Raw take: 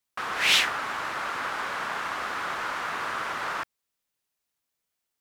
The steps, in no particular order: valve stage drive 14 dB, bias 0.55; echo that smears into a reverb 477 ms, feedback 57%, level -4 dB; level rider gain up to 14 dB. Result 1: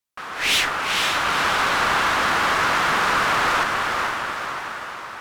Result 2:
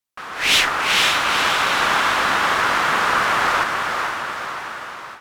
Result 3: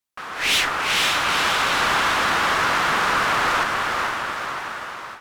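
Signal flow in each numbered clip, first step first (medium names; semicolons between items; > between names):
level rider > echo that smears into a reverb > valve stage; echo that smears into a reverb > valve stage > level rider; echo that smears into a reverb > level rider > valve stage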